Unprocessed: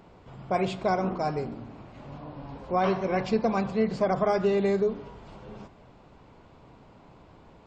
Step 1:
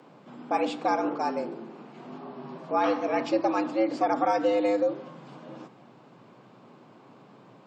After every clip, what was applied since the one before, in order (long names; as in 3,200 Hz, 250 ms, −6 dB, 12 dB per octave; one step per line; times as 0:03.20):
frequency shifter +110 Hz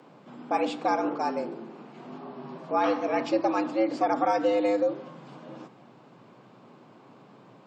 no processing that can be heard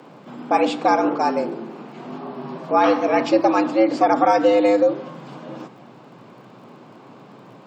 surface crackle 23 per second −56 dBFS
level +8.5 dB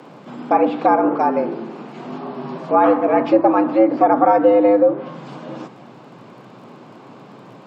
treble cut that deepens with the level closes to 1,400 Hz, closed at −15 dBFS
level +3 dB